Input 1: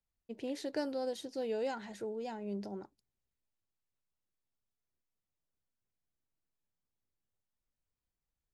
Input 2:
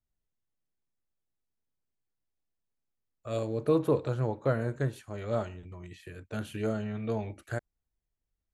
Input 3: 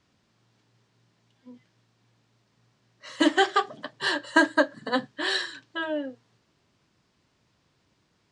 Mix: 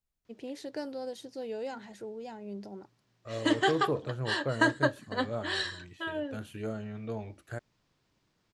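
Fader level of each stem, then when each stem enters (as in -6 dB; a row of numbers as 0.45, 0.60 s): -1.5, -5.0, -5.5 dB; 0.00, 0.00, 0.25 s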